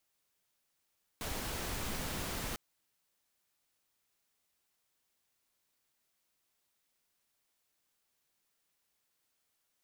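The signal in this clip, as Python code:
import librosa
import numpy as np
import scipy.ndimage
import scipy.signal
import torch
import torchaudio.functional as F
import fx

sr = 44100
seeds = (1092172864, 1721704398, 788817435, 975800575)

y = fx.noise_colour(sr, seeds[0], length_s=1.35, colour='pink', level_db=-38.5)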